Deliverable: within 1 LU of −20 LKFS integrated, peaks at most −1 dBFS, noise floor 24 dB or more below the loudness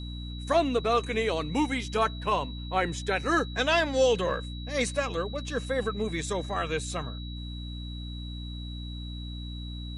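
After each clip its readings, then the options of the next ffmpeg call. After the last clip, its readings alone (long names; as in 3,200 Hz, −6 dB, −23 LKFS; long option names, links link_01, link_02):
mains hum 60 Hz; hum harmonics up to 300 Hz; level of the hum −35 dBFS; interfering tone 3,900 Hz; level of the tone −44 dBFS; integrated loudness −29.5 LKFS; sample peak −11.5 dBFS; target loudness −20.0 LKFS
→ -af "bandreject=frequency=60:width_type=h:width=6,bandreject=frequency=120:width_type=h:width=6,bandreject=frequency=180:width_type=h:width=6,bandreject=frequency=240:width_type=h:width=6,bandreject=frequency=300:width_type=h:width=6"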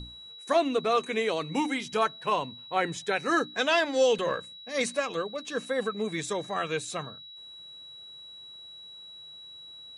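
mains hum none found; interfering tone 3,900 Hz; level of the tone −44 dBFS
→ -af "bandreject=frequency=3900:width=30"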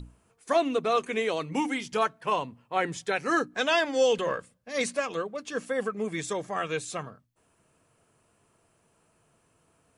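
interfering tone none found; integrated loudness −28.5 LKFS; sample peak −12.0 dBFS; target loudness −20.0 LKFS
→ -af "volume=8.5dB"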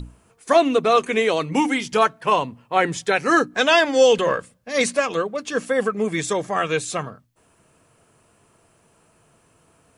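integrated loudness −20.0 LKFS; sample peak −3.5 dBFS; background noise floor −60 dBFS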